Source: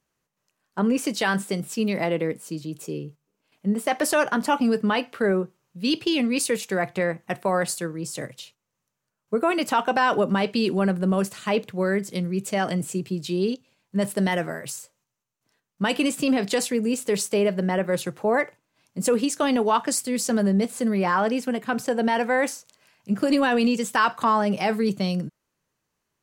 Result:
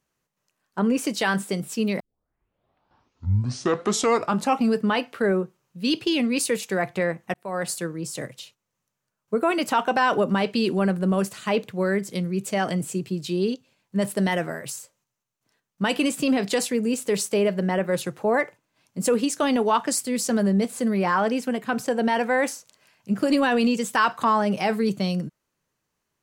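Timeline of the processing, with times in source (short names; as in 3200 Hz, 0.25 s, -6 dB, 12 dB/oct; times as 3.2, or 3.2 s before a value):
2 tape start 2.74 s
7.34–7.75 fade in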